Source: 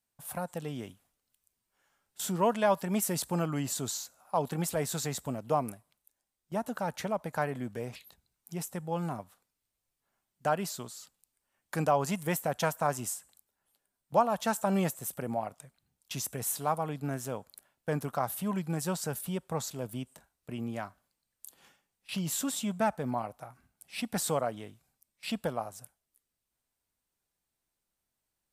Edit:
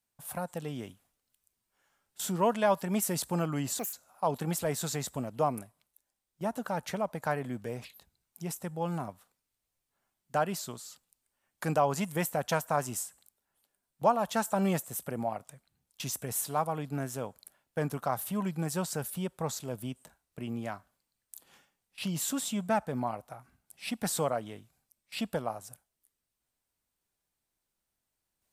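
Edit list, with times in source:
3.79–4.04 s: speed 177%

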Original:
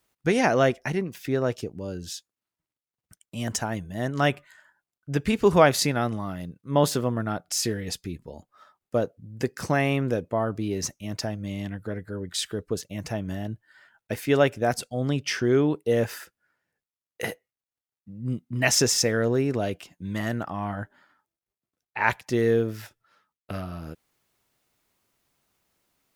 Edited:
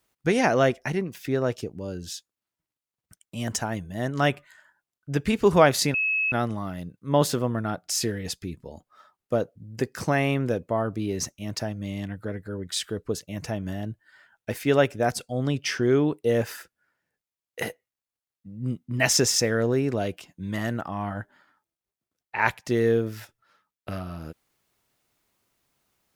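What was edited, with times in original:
5.94 s: add tone 2.58 kHz -21.5 dBFS 0.38 s

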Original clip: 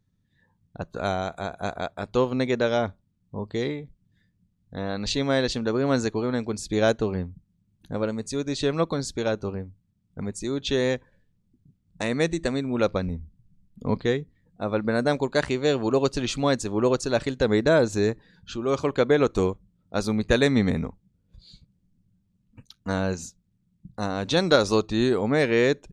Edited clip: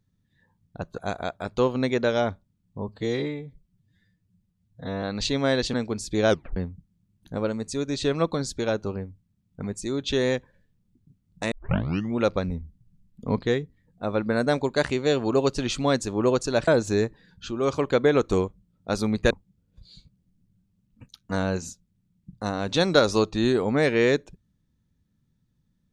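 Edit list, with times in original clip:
0.98–1.55 s: delete
3.45–4.88 s: stretch 1.5×
5.59–6.32 s: delete
6.88 s: tape stop 0.27 s
12.10 s: tape start 0.65 s
17.26–17.73 s: delete
20.36–20.87 s: delete

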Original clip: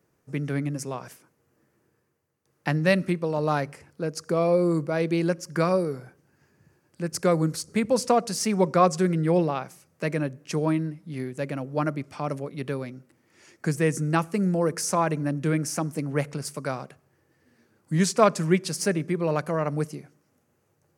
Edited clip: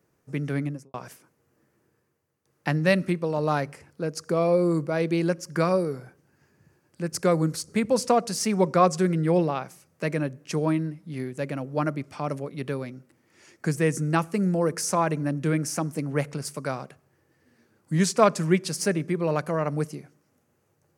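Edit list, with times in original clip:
0.61–0.94 s: studio fade out

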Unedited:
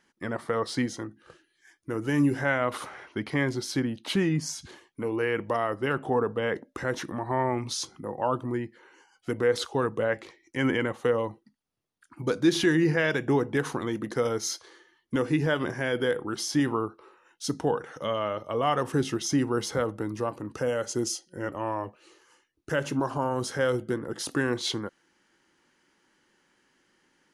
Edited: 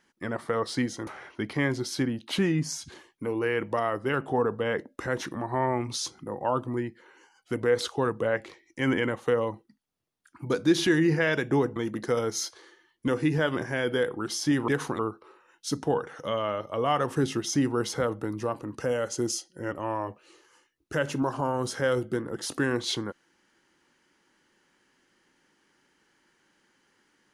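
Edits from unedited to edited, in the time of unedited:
1.07–2.84 s: delete
13.53–13.84 s: move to 16.76 s

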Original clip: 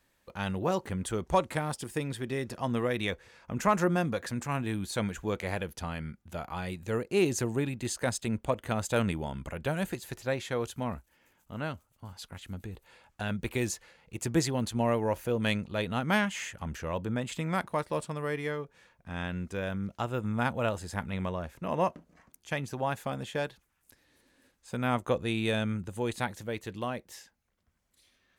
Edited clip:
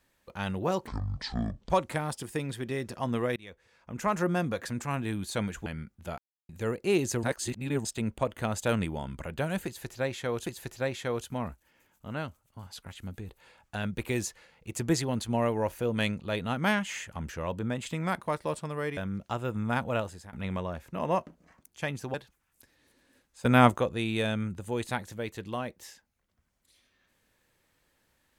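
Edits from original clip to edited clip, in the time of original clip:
0.87–1.31 s: speed 53%
2.97–4.04 s: fade in, from -22.5 dB
5.27–5.93 s: delete
6.45–6.76 s: mute
7.50–8.12 s: reverse
9.92–10.73 s: loop, 2 plays
18.43–19.66 s: delete
20.65–21.02 s: fade out, to -20 dB
22.83–23.43 s: delete
24.74–25.07 s: gain +9.5 dB

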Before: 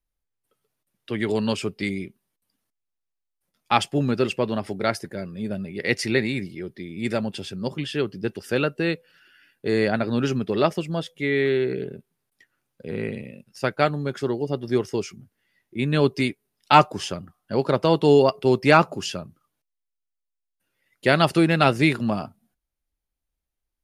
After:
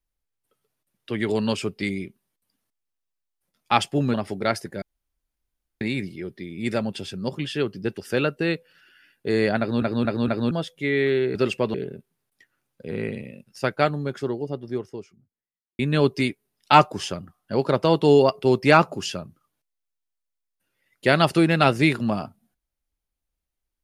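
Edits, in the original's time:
4.14–4.53 s: move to 11.74 s
5.21–6.20 s: room tone
9.98 s: stutter in place 0.23 s, 4 plays
13.67–15.79 s: studio fade out

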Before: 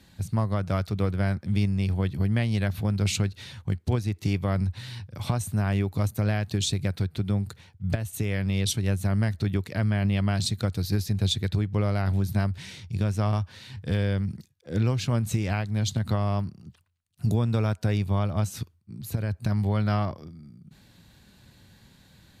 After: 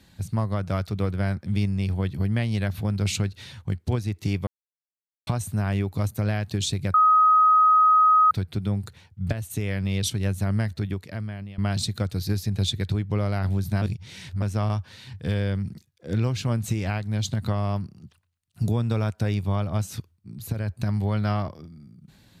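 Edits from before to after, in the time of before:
4.47–5.27 s: mute
6.94 s: add tone 1.26 kHz -13.5 dBFS 1.37 s
9.24–10.21 s: fade out, to -19.5 dB
12.45–13.05 s: reverse

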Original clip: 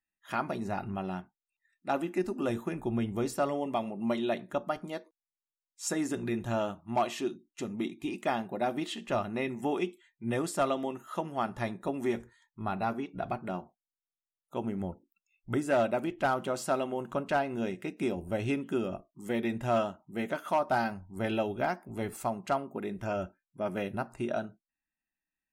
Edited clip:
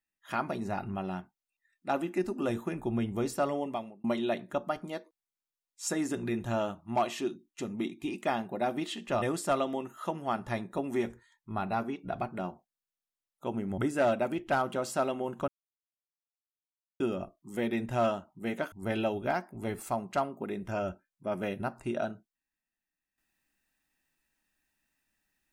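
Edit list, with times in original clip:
3.60–4.04 s: fade out
9.22–10.32 s: delete
14.88–15.50 s: delete
17.20–18.72 s: mute
20.44–21.06 s: delete

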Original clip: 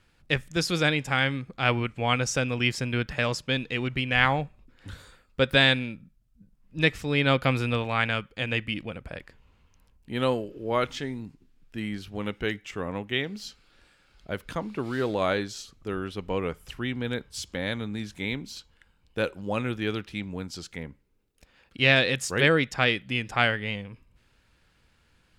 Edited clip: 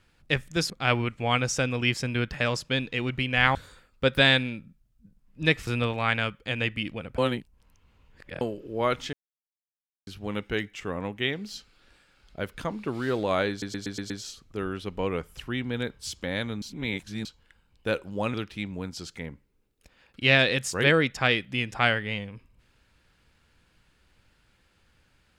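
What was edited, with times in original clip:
0.70–1.48 s: delete
4.33–4.91 s: delete
7.03–7.58 s: delete
9.09–10.32 s: reverse
11.04–11.98 s: mute
15.41 s: stutter 0.12 s, 6 plays
17.93–18.56 s: reverse
19.65–19.91 s: delete

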